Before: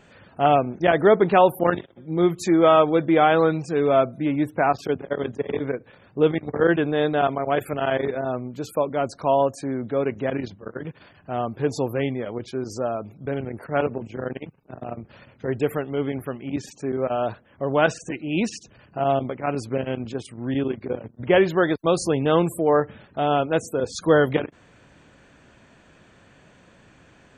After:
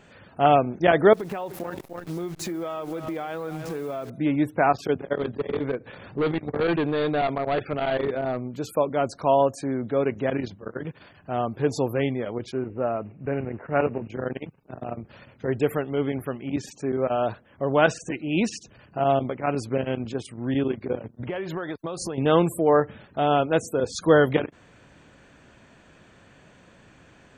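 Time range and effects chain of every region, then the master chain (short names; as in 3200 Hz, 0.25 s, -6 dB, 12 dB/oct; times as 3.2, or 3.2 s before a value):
1.13–4.1 level-crossing sampler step -35 dBFS + echo 0.294 s -17.5 dB + compressor 16:1, threshold -27 dBFS
5.15–8.56 hard clip -20 dBFS + upward compressor, threshold -32 dBFS + brick-wall FIR low-pass 4700 Hz
12.52–14.1 block floating point 5-bit + brick-wall FIR low-pass 2900 Hz + mismatched tape noise reduction decoder only
21.04–22.18 dynamic EQ 1100 Hz, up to +4 dB, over -30 dBFS, Q 1 + compressor 10:1, threshold -27 dBFS
whole clip: dry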